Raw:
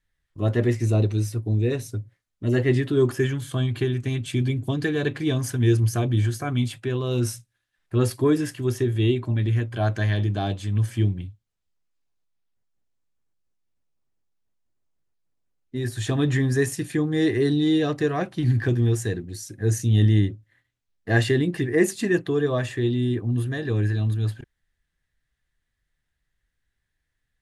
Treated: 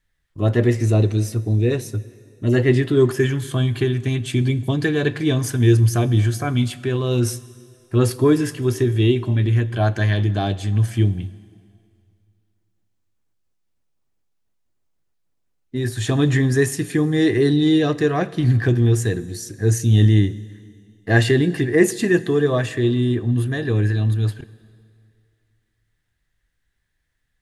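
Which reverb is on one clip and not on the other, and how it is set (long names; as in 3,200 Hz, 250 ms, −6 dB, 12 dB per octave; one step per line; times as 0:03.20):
dense smooth reverb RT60 2.3 s, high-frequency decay 0.95×, DRR 17 dB
level +4.5 dB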